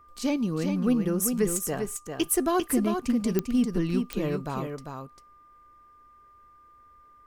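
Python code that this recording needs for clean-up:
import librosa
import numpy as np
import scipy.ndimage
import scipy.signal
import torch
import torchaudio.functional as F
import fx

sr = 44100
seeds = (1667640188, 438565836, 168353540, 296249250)

y = fx.fix_declick_ar(x, sr, threshold=10.0)
y = fx.notch(y, sr, hz=1200.0, q=30.0)
y = fx.fix_echo_inverse(y, sr, delay_ms=397, level_db=-6.0)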